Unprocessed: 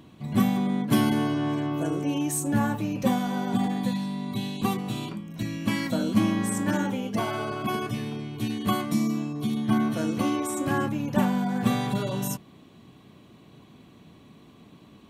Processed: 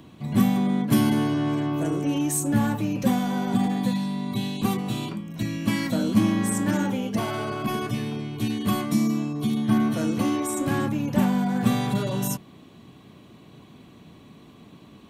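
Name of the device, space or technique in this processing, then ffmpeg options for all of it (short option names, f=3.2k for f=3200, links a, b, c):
one-band saturation: -filter_complex "[0:a]acrossover=split=330|4900[a][b][c];[b]asoftclip=type=tanh:threshold=-29dB[d];[a][d][c]amix=inputs=3:normalize=0,volume=3dB"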